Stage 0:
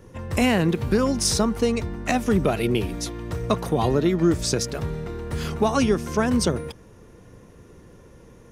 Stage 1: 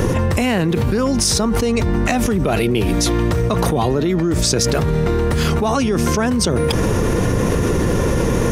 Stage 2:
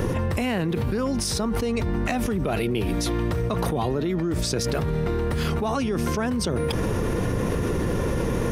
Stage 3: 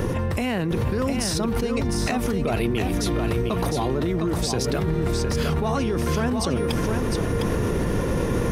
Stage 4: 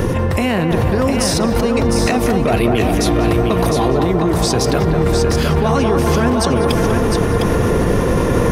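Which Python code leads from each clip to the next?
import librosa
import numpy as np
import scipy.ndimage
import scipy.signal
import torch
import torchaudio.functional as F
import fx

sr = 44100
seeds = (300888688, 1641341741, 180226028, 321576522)

y1 = fx.env_flatten(x, sr, amount_pct=100)
y1 = F.gain(torch.from_numpy(y1), -1.0).numpy()
y2 = fx.peak_eq(y1, sr, hz=6800.0, db=-5.5, octaves=0.73)
y2 = F.gain(torch.from_numpy(y2), -7.5).numpy()
y3 = y2 + 10.0 ** (-5.0 / 20.0) * np.pad(y2, (int(707 * sr / 1000.0), 0))[:len(y2)]
y4 = fx.echo_banded(y3, sr, ms=195, feedback_pct=81, hz=800.0, wet_db=-3.5)
y4 = F.gain(torch.from_numpy(y4), 7.5).numpy()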